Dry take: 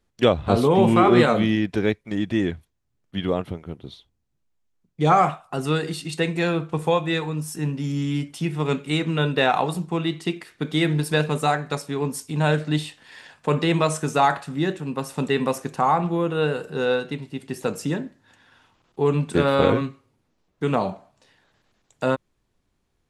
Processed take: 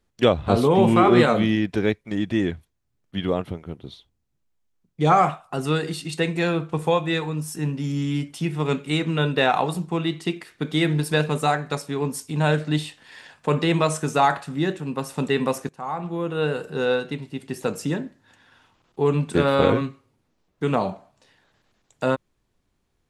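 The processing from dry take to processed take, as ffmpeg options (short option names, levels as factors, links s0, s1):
-filter_complex "[0:a]asplit=2[s0][s1];[s0]atrim=end=15.69,asetpts=PTS-STARTPTS,afade=t=out:st=15.686:d=0.004:c=hsin:silence=0.105925[s2];[s1]atrim=start=15.69,asetpts=PTS-STARTPTS,afade=t=in:d=0.88:silence=0.105925[s3];[s2][s3]concat=n=2:v=0:a=1"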